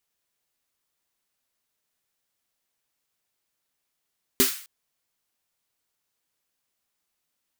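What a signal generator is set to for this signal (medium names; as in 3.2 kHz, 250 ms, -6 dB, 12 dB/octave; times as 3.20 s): snare drum length 0.26 s, tones 260 Hz, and 390 Hz, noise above 1.3 kHz, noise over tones 1 dB, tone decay 0.15 s, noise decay 0.47 s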